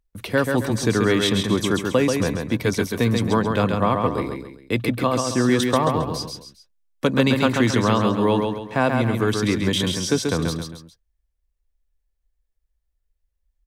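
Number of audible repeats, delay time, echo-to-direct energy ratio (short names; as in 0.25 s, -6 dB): 3, 0.135 s, -4.0 dB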